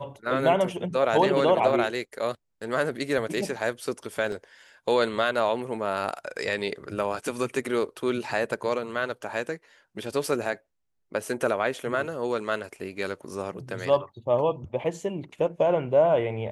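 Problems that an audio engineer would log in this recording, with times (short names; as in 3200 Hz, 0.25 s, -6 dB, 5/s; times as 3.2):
4.32 gap 2.4 ms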